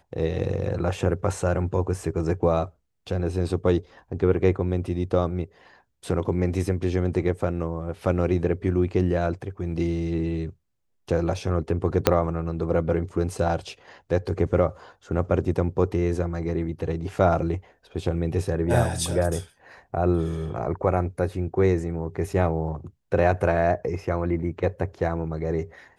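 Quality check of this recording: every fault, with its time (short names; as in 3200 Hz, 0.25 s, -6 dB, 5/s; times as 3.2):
12.07 pop -2 dBFS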